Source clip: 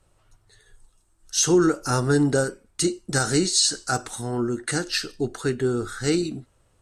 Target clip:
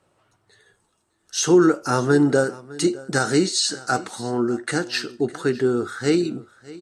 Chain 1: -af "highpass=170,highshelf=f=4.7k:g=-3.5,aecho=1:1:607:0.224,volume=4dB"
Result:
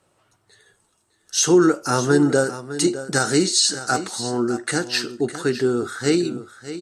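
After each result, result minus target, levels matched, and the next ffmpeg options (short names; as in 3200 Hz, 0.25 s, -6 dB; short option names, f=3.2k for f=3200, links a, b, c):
echo-to-direct +7 dB; 8000 Hz band +4.0 dB
-af "highpass=170,highshelf=f=4.7k:g=-3.5,aecho=1:1:607:0.1,volume=4dB"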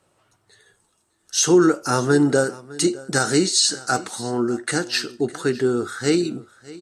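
8000 Hz band +4.0 dB
-af "highpass=170,highshelf=f=4.7k:g=-10.5,aecho=1:1:607:0.1,volume=4dB"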